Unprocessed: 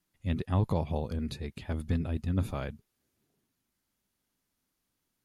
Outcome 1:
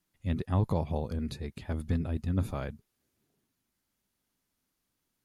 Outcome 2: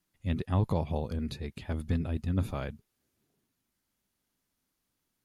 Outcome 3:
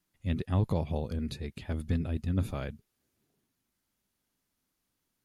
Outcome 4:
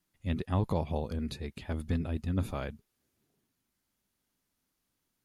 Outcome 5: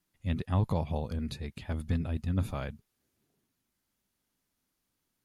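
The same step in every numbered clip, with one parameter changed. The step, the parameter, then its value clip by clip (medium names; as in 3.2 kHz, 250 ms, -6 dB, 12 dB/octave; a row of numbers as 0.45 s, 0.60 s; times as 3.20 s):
dynamic bell, frequency: 2.9 kHz, 8.5 kHz, 950 Hz, 120 Hz, 370 Hz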